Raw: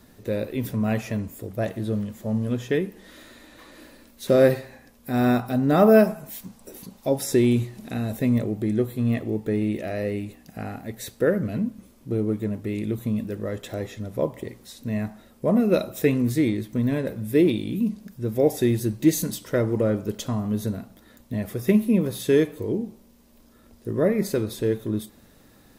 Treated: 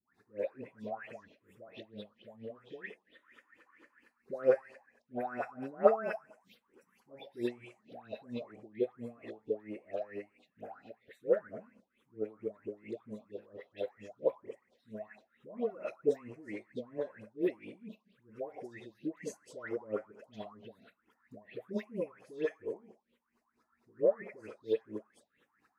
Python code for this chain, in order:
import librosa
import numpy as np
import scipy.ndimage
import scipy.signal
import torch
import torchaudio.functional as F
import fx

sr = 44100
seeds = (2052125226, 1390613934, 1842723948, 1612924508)

y = fx.filter_lfo_bandpass(x, sr, shape='sine', hz=4.4, low_hz=470.0, high_hz=3400.0, q=4.2)
y = fx.env_phaser(y, sr, low_hz=510.0, high_hz=3700.0, full_db=-37.5)
y = fx.dispersion(y, sr, late='highs', ms=147.0, hz=1100.0)
y = y * librosa.db_to_amplitude(-1.0)